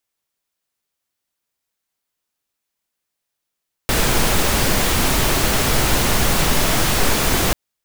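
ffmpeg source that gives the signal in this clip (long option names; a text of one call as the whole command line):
ffmpeg -f lavfi -i "anoisesrc=color=pink:amplitude=0.767:duration=3.64:sample_rate=44100:seed=1" out.wav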